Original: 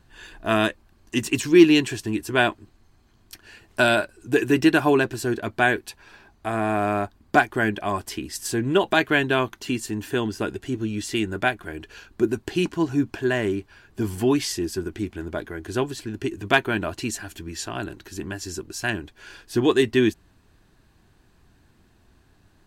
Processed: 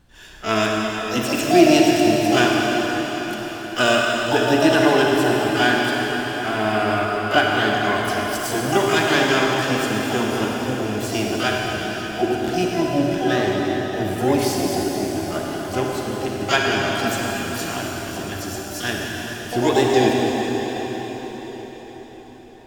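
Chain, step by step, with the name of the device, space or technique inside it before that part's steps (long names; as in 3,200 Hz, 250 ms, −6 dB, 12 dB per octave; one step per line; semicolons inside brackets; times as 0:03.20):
shimmer-style reverb (pitch-shifted copies added +12 semitones −5 dB; convolution reverb RT60 5.5 s, pre-delay 34 ms, DRR −2.5 dB)
level −1.5 dB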